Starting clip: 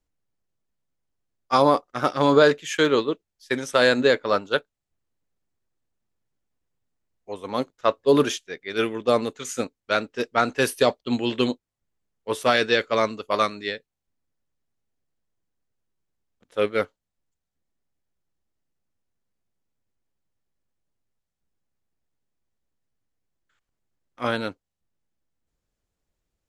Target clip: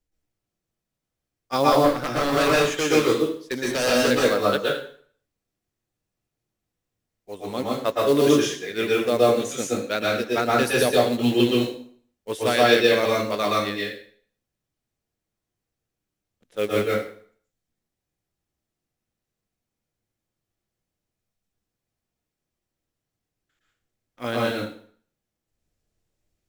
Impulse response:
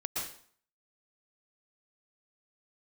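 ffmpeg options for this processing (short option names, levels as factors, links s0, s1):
-filter_complex "[0:a]equalizer=f=1100:t=o:w=0.96:g=-6,asettb=1/sr,asplit=3[s0][s1][s2];[s0]atrim=end=1.724[s3];[s1]atrim=start=1.72:end=4.11,asetpts=PTS-STARTPTS,afade=t=in:d=0.004:c=qsin,afade=t=out:st=2.386:d=0.004:c=qsin,aeval=exprs='0.15*(abs(mod(val(0)/0.15+3,4)-2)-1)':c=same[s4];[s2]atrim=start=4.106[s5];[s3][s4]acrossfade=d=0.004:c1=hsin:c2=qsin[s6];[s6][s5]acrossfade=d=0.004:c1=qsin:c2=hsin,acrusher=bits=5:mode=log:mix=0:aa=0.000001[s7];[1:a]atrim=start_sample=2205,asetrate=43659,aresample=44100[s8];[s7][s8]afir=irnorm=-1:irlink=0"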